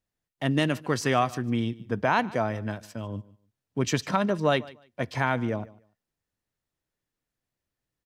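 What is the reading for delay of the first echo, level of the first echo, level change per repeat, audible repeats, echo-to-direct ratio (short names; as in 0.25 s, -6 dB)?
0.148 s, -21.0 dB, -14.0 dB, 2, -21.0 dB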